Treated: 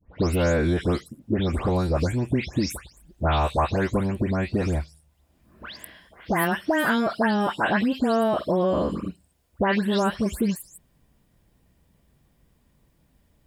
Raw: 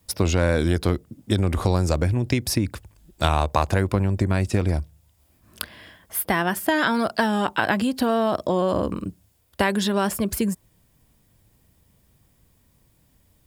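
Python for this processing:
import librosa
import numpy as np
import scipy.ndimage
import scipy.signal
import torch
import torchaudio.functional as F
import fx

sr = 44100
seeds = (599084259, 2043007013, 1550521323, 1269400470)

y = fx.spec_delay(x, sr, highs='late', ms=231)
y = fx.high_shelf(y, sr, hz=5000.0, db=-10.0)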